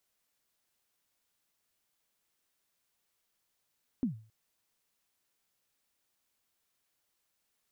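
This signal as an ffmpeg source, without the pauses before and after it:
ffmpeg -f lavfi -i "aevalsrc='0.0631*pow(10,-3*t/0.4)*sin(2*PI*(280*0.117/log(110/280)*(exp(log(110/280)*min(t,0.117)/0.117)-1)+110*max(t-0.117,0)))':duration=0.27:sample_rate=44100" out.wav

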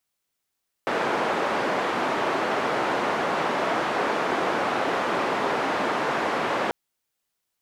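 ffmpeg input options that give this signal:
ffmpeg -f lavfi -i "anoisesrc=color=white:duration=5.84:sample_rate=44100:seed=1,highpass=frequency=270,lowpass=frequency=1100,volume=-6.4dB" out.wav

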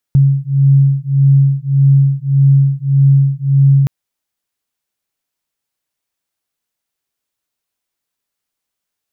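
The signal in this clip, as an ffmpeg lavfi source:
ffmpeg -f lavfi -i "aevalsrc='0.299*(sin(2*PI*137*t)+sin(2*PI*138.7*t))':duration=3.72:sample_rate=44100" out.wav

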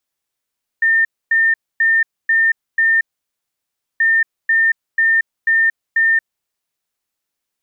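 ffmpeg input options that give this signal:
ffmpeg -f lavfi -i "aevalsrc='0.299*sin(2*PI*1810*t)*clip(min(mod(mod(t,3.18),0.49),0.23-mod(mod(t,3.18),0.49))/0.005,0,1)*lt(mod(t,3.18),2.45)':duration=6.36:sample_rate=44100" out.wav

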